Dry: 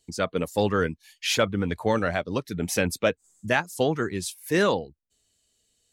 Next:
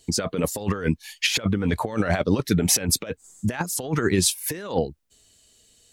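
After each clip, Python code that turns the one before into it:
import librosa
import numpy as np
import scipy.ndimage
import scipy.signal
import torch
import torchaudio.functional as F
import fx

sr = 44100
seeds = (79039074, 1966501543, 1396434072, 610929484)

y = fx.over_compress(x, sr, threshold_db=-29.0, ratio=-0.5)
y = y * librosa.db_to_amplitude(7.0)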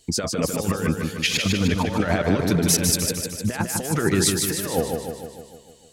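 y = fx.echo_feedback(x, sr, ms=152, feedback_pct=59, wet_db=-4.5)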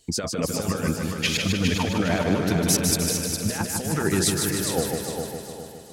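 y = fx.echo_feedback(x, sr, ms=408, feedback_pct=38, wet_db=-6.0)
y = y * librosa.db_to_amplitude(-2.5)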